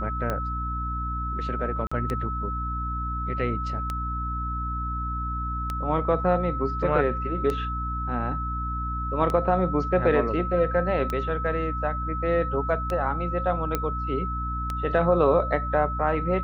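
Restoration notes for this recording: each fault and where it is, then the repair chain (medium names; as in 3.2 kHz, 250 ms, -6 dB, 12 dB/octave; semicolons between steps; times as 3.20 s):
hum 60 Hz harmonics 5 -31 dBFS
tick 33 1/3 rpm -15 dBFS
whine 1.3 kHz -30 dBFS
1.87–1.92 s: dropout 45 ms
13.75 s: pop -11 dBFS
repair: de-click; de-hum 60 Hz, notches 5; band-stop 1.3 kHz, Q 30; interpolate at 1.87 s, 45 ms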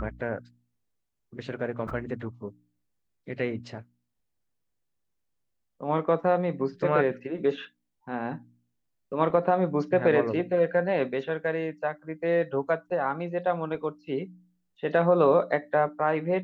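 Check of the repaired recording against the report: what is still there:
nothing left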